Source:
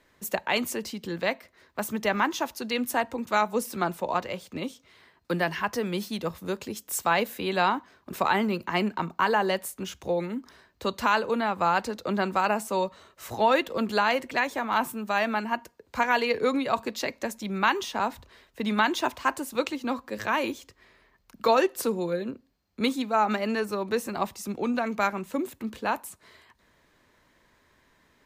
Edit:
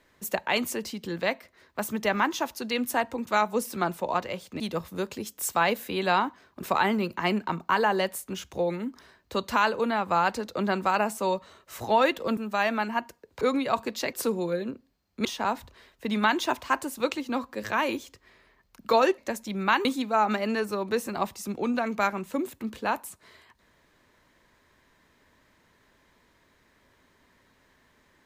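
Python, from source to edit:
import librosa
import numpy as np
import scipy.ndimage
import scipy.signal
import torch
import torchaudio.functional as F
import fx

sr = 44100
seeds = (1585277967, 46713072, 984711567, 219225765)

y = fx.edit(x, sr, fx.cut(start_s=4.6, length_s=1.5),
    fx.cut(start_s=13.87, length_s=1.06),
    fx.cut(start_s=15.97, length_s=0.44),
    fx.swap(start_s=17.13, length_s=0.67, other_s=21.73, other_length_s=1.12), tone=tone)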